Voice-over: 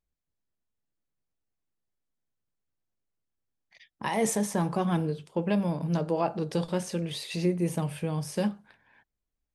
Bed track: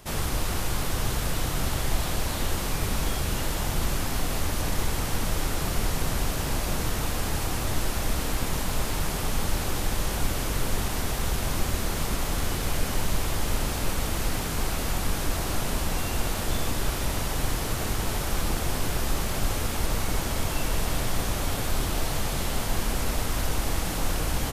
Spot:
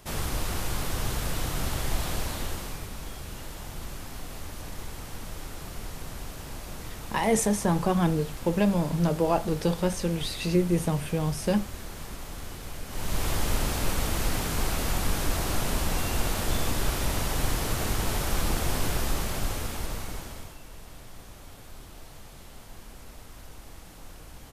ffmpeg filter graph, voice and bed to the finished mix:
-filter_complex "[0:a]adelay=3100,volume=3dB[a];[1:a]volume=9dB,afade=t=out:st=2.16:d=0.73:silence=0.354813,afade=t=in:st=12.88:d=0.4:silence=0.266073,afade=t=out:st=18.85:d=1.73:silence=0.112202[b];[a][b]amix=inputs=2:normalize=0"

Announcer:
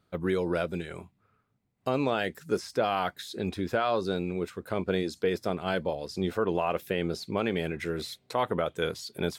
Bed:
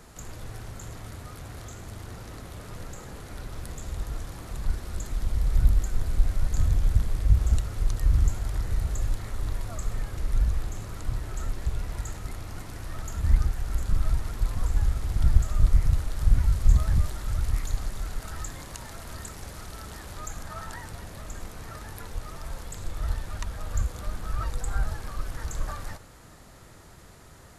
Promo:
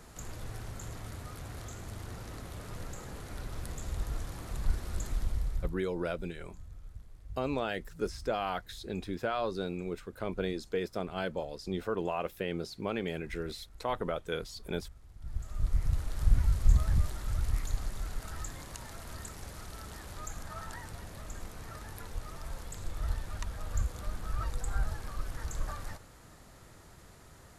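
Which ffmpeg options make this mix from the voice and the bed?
-filter_complex "[0:a]adelay=5500,volume=-5.5dB[a];[1:a]volume=18.5dB,afade=t=out:st=5.1:d=0.66:silence=0.0707946,afade=t=in:st=15.21:d=0.98:silence=0.0891251[b];[a][b]amix=inputs=2:normalize=0"

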